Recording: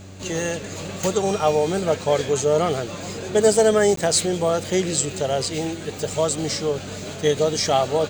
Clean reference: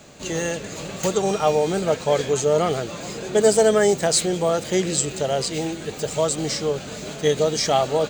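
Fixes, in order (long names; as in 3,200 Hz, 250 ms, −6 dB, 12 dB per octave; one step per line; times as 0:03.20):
hum removal 95.5 Hz, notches 4
repair the gap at 0:03.96, 13 ms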